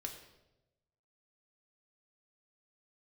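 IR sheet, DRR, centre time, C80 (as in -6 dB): 2.0 dB, 22 ms, 9.5 dB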